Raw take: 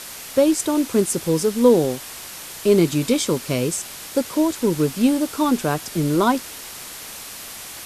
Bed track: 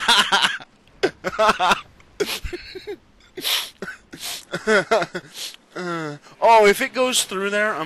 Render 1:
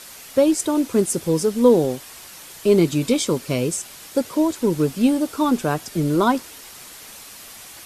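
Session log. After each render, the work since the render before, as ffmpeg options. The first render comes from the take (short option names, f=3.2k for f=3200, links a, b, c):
-af "afftdn=nr=6:nf=-36"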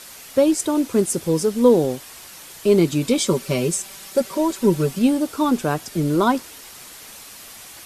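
-filter_complex "[0:a]asettb=1/sr,asplit=3[a][b][c];[a]atrim=end=3.174[d];[b]atrim=start=3.17:end=4.99,asetpts=PTS-STARTPTS,afade=t=in:d=0.004:c=qsin,afade=t=out:st=1.816:d=0.004:c=qsin,aecho=1:1:5.2:0.7,atrim=end_sample=80262[e];[c]atrim=start=4.986[f];[d][e]acrossfade=d=0.004:c1=hsin:c2=qsin[g];[g][f]acrossfade=d=0.004:c1=qsin:c2=hsin"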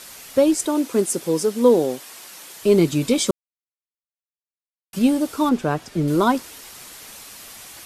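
-filter_complex "[0:a]asettb=1/sr,asplit=3[a][b][c];[a]atrim=end=0.664[d];[b]atrim=start=0.66:end=2.61,asetpts=PTS-STARTPTS,afade=t=in:d=0.004:c=qsin,afade=t=out:st=1.946:d=0.004:c=qsin,highpass=220[e];[c]atrim=start=2.606[f];[d][e]acrossfade=d=0.004:c1=hsin:c2=qsin[g];[g][f]acrossfade=d=0.004:c1=qsin:c2=hsin,asettb=1/sr,asplit=3[h][i][j];[h]atrim=end=5.494[k];[i]atrim=start=5.49:end=6.08,asetpts=PTS-STARTPTS,afade=t=in:d=0.004:c=qsin,afade=t=out:st=0.586:d=0.004:c=qsin,aemphasis=mode=reproduction:type=50kf[l];[j]atrim=start=6.076[m];[k][l]acrossfade=d=0.004:c1=hsin:c2=qsin[n];[n][m]acrossfade=d=0.004:c1=qsin:c2=hsin,asplit=3[o][p][q];[o]atrim=end=3.31,asetpts=PTS-STARTPTS,afade=t=out:st=3.306:d=0.004:c=hsin[r];[p]atrim=start=3.31:end=4.93,asetpts=PTS-STARTPTS,volume=0[s];[q]atrim=start=4.93,asetpts=PTS-STARTPTS,afade=t=in:d=0.004:c=hsin[t];[r][s][t]concat=n=3:v=0:a=1"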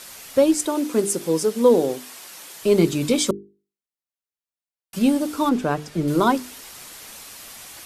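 -af "bandreject=f=50:t=h:w=6,bandreject=f=100:t=h:w=6,bandreject=f=150:t=h:w=6,bandreject=f=200:t=h:w=6,bandreject=f=250:t=h:w=6,bandreject=f=300:t=h:w=6,bandreject=f=350:t=h:w=6,bandreject=f=400:t=h:w=6,bandreject=f=450:t=h:w=6"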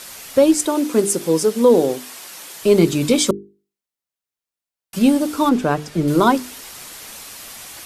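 -af "volume=4dB,alimiter=limit=-3dB:level=0:latency=1"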